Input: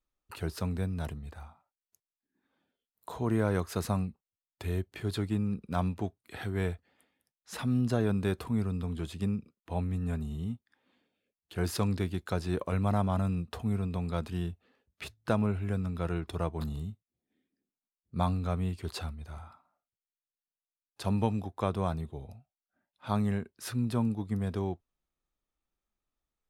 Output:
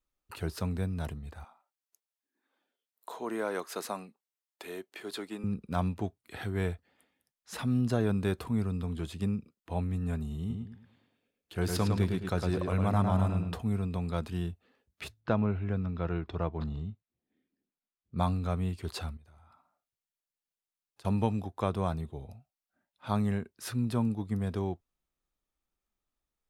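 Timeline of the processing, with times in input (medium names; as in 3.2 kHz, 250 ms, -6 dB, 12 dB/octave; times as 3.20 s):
1.44–5.44 s: Bessel high-pass 390 Hz, order 4
10.39–13.56 s: filtered feedback delay 107 ms, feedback 34%, low-pass 4.6 kHz, level -4 dB
15.20–18.18 s: Gaussian low-pass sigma 1.9 samples
19.17–21.05 s: compression 5:1, threshold -57 dBFS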